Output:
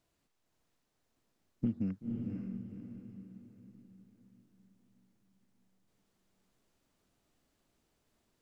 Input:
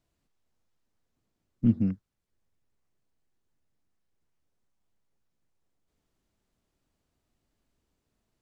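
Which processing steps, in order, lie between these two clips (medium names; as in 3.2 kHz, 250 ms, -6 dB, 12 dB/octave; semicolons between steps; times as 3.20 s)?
bass shelf 140 Hz -8 dB; compression 12:1, threshold -31 dBFS, peak gain reduction 13 dB; on a send: echo that smears into a reverb 515 ms, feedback 45%, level -3 dB; on the sum: trim +2 dB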